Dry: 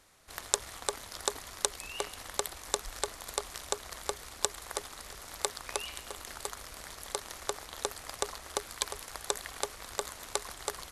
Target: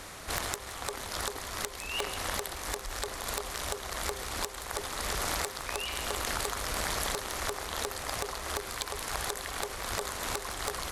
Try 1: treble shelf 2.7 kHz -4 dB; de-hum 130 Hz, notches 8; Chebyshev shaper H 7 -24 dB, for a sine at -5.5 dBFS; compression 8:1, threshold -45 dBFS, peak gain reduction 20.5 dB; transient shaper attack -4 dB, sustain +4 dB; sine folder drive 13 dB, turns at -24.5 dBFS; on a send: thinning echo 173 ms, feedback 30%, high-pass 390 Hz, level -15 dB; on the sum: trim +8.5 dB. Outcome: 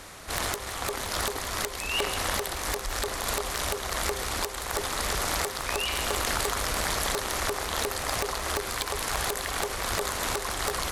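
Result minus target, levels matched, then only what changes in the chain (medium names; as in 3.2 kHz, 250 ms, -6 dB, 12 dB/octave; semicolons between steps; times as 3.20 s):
compression: peak gain reduction -6.5 dB
change: compression 8:1, threshold -52.5 dBFS, peak gain reduction 27 dB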